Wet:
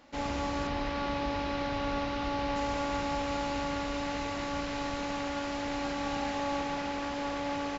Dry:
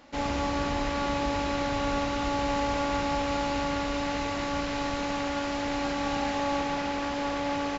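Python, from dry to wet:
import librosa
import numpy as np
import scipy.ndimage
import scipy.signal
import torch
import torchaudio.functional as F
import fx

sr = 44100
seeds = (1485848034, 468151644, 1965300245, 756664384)

y = fx.lowpass(x, sr, hz=5500.0, slope=24, at=(0.67, 2.56))
y = y * librosa.db_to_amplitude(-4.0)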